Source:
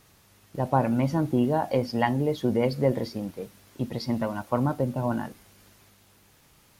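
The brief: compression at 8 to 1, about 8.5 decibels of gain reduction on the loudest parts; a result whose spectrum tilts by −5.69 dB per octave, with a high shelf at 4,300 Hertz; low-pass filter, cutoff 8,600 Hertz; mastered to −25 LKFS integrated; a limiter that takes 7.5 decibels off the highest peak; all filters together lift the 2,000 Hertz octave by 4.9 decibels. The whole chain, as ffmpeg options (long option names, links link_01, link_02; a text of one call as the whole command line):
ffmpeg -i in.wav -af "lowpass=8600,equalizer=frequency=2000:width_type=o:gain=4.5,highshelf=frequency=4300:gain=7,acompressor=threshold=-25dB:ratio=8,volume=8dB,alimiter=limit=-14dB:level=0:latency=1" out.wav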